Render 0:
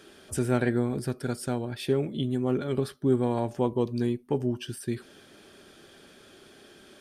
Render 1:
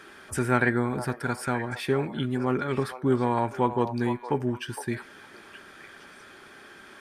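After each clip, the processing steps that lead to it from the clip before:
flat-topped bell 1,400 Hz +10 dB
echo through a band-pass that steps 462 ms, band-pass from 760 Hz, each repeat 1.4 octaves, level −7.5 dB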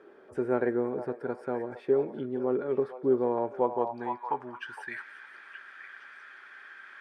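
band-pass filter sweep 460 Hz → 1,700 Hz, 0:03.41–0:04.95
delay with a high-pass on its return 177 ms, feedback 67%, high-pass 2,900 Hz, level −13 dB
level +3.5 dB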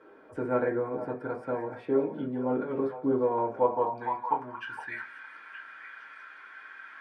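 convolution reverb, pre-delay 4 ms, DRR −4.5 dB
level −3.5 dB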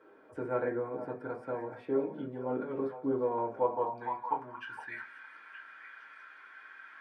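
high-pass filter 58 Hz
mains-hum notches 50/100/150/200/250 Hz
level −4.5 dB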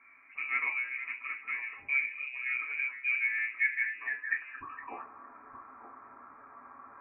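voice inversion scrambler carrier 2,700 Hz

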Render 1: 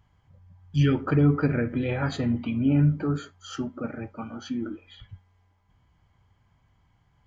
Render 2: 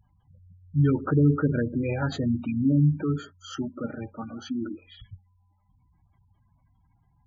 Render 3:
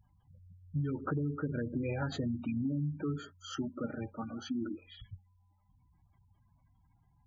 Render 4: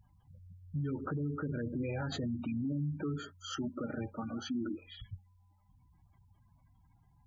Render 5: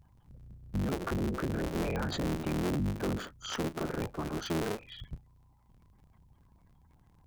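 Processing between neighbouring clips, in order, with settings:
gate on every frequency bin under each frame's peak −20 dB strong
downward compressor 12 to 1, threshold −27 dBFS, peak gain reduction 12.5 dB; level −3.5 dB
brickwall limiter −31.5 dBFS, peak gain reduction 8.5 dB; level +2.5 dB
sub-harmonics by changed cycles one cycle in 3, inverted; level +3.5 dB

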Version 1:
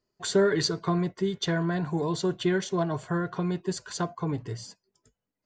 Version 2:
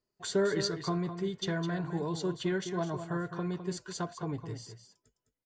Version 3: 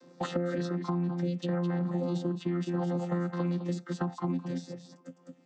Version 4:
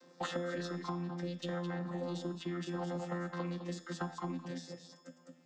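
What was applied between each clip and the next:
single-tap delay 208 ms −9.5 dB; level −6 dB
channel vocoder with a chord as carrier bare fifth, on F3; brickwall limiter −27 dBFS, peak gain reduction 8.5 dB; multiband upward and downward compressor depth 100%; level +4 dB
low-shelf EQ 390 Hz −10.5 dB; in parallel at −6.5 dB: soft clipping −34.5 dBFS, distortion −13 dB; on the sum: tuned comb filter 83 Hz, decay 0.96 s, harmonics all, mix 70%; level +5.5 dB

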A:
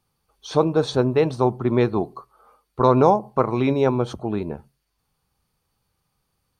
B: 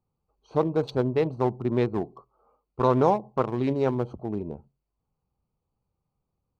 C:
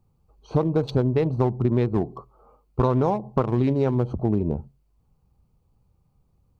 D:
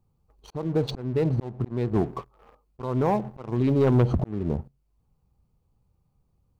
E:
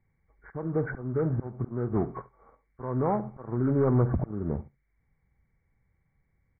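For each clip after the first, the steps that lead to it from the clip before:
adaptive Wiener filter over 25 samples; level −5 dB
low-shelf EQ 180 Hz +11 dB; downward compressor, threshold −26 dBFS, peak gain reduction 12 dB; level +8 dB
volume swells 693 ms; leveller curve on the samples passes 2
hearing-aid frequency compression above 1,100 Hz 4 to 1; single-tap delay 71 ms −18.5 dB; level −3.5 dB

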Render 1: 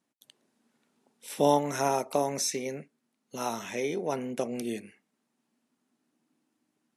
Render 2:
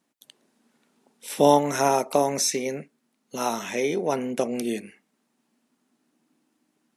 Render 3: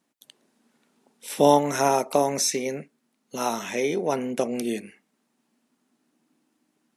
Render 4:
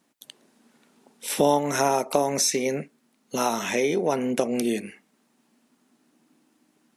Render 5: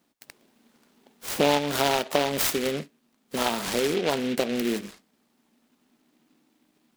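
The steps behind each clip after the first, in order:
parametric band 110 Hz −8 dB 0.39 octaves; level +6 dB
no processing that can be heard
downward compressor 2 to 1, threshold −29 dBFS, peak gain reduction 10 dB; level +6 dB
short delay modulated by noise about 2,400 Hz, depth 0.11 ms; level −1.5 dB

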